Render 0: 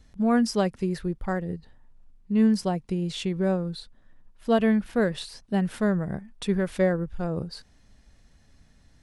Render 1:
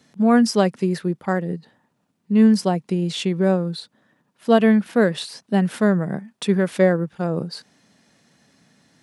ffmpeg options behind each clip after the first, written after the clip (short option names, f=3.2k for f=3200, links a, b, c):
-af "highpass=f=150:w=0.5412,highpass=f=150:w=1.3066,volume=6.5dB"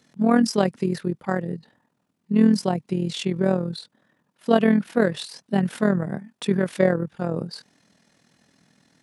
-af "tremolo=f=41:d=0.667"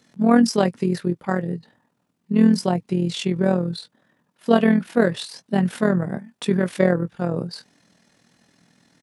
-filter_complex "[0:a]asplit=2[a][b];[b]adelay=17,volume=-11.5dB[c];[a][c]amix=inputs=2:normalize=0,volume=1.5dB"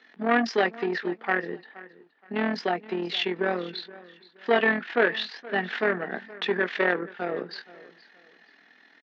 -af "aresample=16000,asoftclip=type=tanh:threshold=-14dB,aresample=44100,highpass=f=330:w=0.5412,highpass=f=330:w=1.3066,equalizer=f=330:t=q:w=4:g=-4,equalizer=f=550:t=q:w=4:g=-10,equalizer=f=1k:t=q:w=4:g=-4,equalizer=f=1.8k:t=q:w=4:g=8,lowpass=f=3.7k:w=0.5412,lowpass=f=3.7k:w=1.3066,aecho=1:1:472|944:0.106|0.0307,volume=4.5dB"